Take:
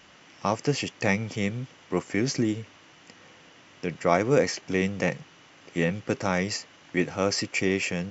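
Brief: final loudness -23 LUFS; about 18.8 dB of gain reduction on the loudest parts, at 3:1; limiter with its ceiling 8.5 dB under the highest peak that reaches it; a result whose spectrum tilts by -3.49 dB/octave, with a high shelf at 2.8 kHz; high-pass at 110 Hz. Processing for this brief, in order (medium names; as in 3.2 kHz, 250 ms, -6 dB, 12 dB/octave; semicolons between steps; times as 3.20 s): high-pass 110 Hz; treble shelf 2.8 kHz +6.5 dB; compression 3:1, threshold -42 dBFS; trim +20 dB; peak limiter -10 dBFS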